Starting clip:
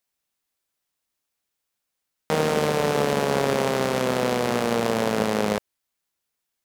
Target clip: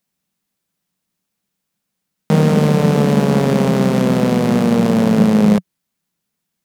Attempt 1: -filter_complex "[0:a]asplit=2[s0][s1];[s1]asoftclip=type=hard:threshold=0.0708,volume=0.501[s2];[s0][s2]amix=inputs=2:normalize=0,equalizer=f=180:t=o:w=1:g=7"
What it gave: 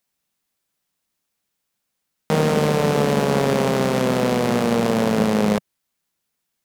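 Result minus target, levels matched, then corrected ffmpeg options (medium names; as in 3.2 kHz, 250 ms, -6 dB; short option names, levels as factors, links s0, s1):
250 Hz band -2.5 dB
-filter_complex "[0:a]asplit=2[s0][s1];[s1]asoftclip=type=hard:threshold=0.0708,volume=0.501[s2];[s0][s2]amix=inputs=2:normalize=0,equalizer=f=180:t=o:w=1:g=18.5"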